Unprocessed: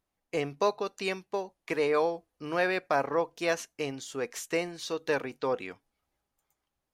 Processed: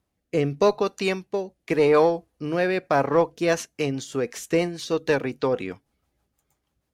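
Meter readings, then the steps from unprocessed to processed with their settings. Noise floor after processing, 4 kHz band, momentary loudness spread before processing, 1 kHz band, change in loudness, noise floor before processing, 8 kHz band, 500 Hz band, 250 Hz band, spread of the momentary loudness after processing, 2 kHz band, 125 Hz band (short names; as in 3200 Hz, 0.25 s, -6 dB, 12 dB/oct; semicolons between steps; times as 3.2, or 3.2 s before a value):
-78 dBFS, +4.5 dB, 9 LU, +5.0 dB, +7.5 dB, -85 dBFS, +4.5 dB, +8.0 dB, +10.0 dB, 10 LU, +3.5 dB, +13.0 dB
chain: HPF 50 Hz; low shelf 270 Hz +9 dB; rotary speaker horn 0.85 Hz, later 6.3 Hz, at 3.07; in parallel at -8 dB: one-sided clip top -28 dBFS; on the sum: gain +4.5 dB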